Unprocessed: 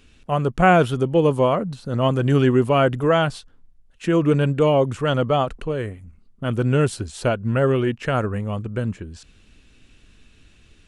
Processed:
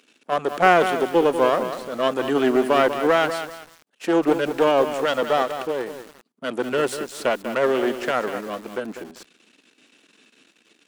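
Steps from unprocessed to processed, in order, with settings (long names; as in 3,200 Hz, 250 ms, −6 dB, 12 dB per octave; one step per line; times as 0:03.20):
gain on one half-wave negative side −12 dB
high-pass filter 250 Hz 24 dB per octave
in parallel at −5.5 dB: asymmetric clip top −21 dBFS
on the sum: feedback echo at a low word length 193 ms, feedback 35%, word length 6 bits, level −9 dB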